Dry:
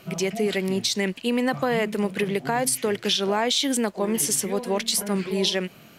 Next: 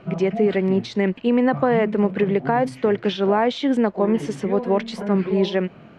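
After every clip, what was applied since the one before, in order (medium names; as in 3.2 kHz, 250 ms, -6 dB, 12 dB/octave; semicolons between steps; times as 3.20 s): Bessel low-pass 1.3 kHz, order 2; trim +6 dB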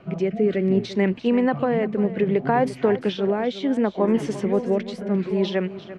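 rotary cabinet horn 0.65 Hz; delay 345 ms -14.5 dB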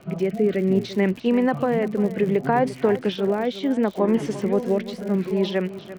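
crackle 82 per s -32 dBFS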